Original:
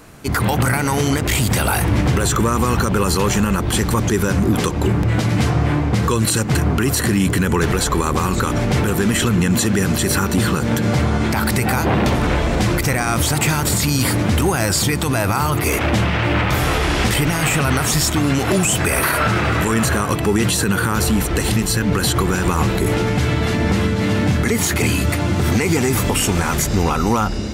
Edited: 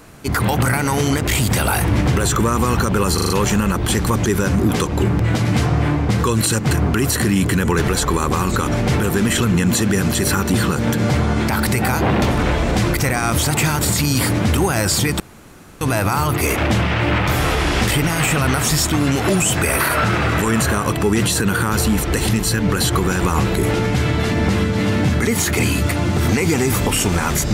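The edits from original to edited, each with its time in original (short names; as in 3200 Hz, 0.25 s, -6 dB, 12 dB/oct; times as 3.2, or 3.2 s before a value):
3.14 stutter 0.04 s, 5 plays
15.04 insert room tone 0.61 s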